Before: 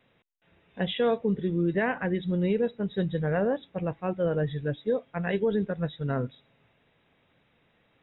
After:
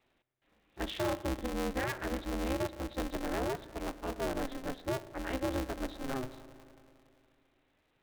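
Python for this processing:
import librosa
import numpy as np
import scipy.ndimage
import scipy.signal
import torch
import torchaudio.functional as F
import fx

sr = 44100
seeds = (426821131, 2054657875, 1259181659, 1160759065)

y = fx.rev_spring(x, sr, rt60_s=2.7, pass_ms=(36,), chirp_ms=35, drr_db=13.0)
y = y * np.sign(np.sin(2.0 * np.pi * 130.0 * np.arange(len(y)) / sr))
y = F.gain(torch.from_numpy(y), -8.0).numpy()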